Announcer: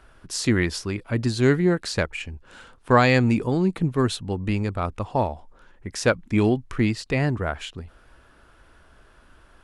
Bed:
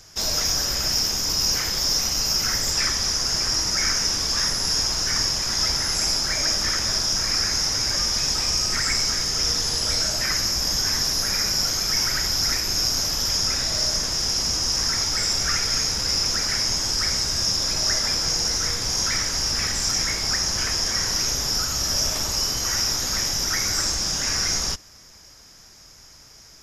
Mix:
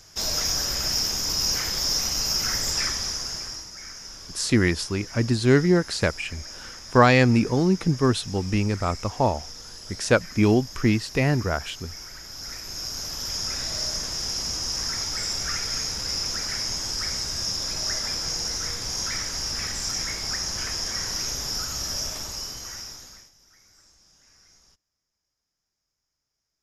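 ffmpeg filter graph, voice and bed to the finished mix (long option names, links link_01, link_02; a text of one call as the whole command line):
ffmpeg -i stem1.wav -i stem2.wav -filter_complex "[0:a]adelay=4050,volume=1dB[link_01];[1:a]volume=10dB,afade=type=out:start_time=2.73:duration=0.96:silence=0.16788,afade=type=in:start_time=12.24:duration=1.41:silence=0.237137,afade=type=out:start_time=21.78:duration=1.53:silence=0.0375837[link_02];[link_01][link_02]amix=inputs=2:normalize=0" out.wav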